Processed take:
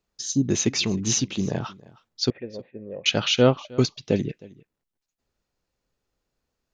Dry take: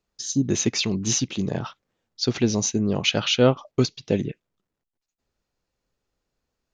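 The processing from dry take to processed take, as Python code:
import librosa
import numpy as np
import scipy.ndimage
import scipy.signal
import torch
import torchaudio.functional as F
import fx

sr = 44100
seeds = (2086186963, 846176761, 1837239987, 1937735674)

p1 = fx.formant_cascade(x, sr, vowel='e', at=(2.3, 3.06))
y = p1 + fx.echo_single(p1, sr, ms=313, db=-22.0, dry=0)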